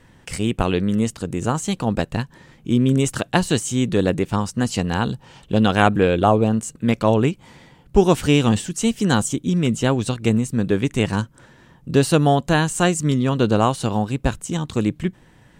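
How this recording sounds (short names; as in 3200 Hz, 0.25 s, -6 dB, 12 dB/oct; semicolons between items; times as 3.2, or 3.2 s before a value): noise floor -52 dBFS; spectral tilt -6.0 dB/oct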